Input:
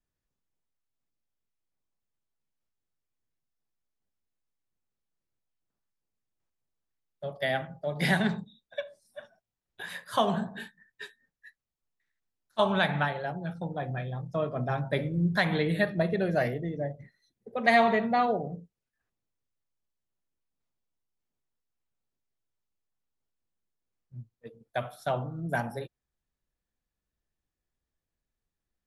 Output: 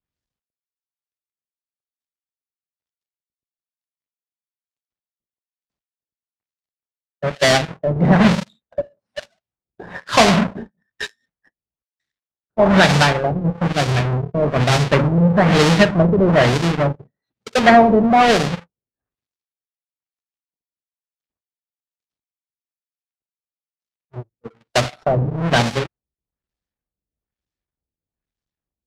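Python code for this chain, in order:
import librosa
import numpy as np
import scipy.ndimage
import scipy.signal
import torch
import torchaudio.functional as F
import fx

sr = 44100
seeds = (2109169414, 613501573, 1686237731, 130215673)

p1 = fx.halfwave_hold(x, sr)
p2 = scipy.signal.sosfilt(scipy.signal.butter(2, 43.0, 'highpass', fs=sr, output='sos'), p1)
p3 = fx.high_shelf(p2, sr, hz=3500.0, db=10.0)
p4 = (np.mod(10.0 ** (22.5 / 20.0) * p3 + 1.0, 2.0) - 1.0) / 10.0 ** (22.5 / 20.0)
p5 = p3 + (p4 * librosa.db_to_amplitude(-9.5))
p6 = fx.leveller(p5, sr, passes=3)
p7 = fx.filter_lfo_lowpass(p6, sr, shape='sine', hz=1.1, low_hz=460.0, high_hz=5400.0, q=0.88)
y = p7 * librosa.db_to_amplitude(-2.0)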